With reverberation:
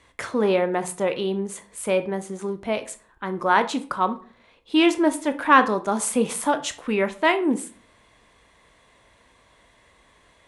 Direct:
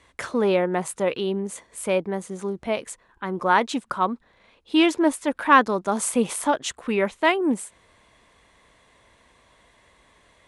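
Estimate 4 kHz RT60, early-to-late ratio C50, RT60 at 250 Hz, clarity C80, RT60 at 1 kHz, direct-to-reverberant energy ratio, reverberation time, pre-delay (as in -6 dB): 0.30 s, 15.0 dB, 0.50 s, 20.0 dB, 0.40 s, 9.5 dB, 0.45 s, 16 ms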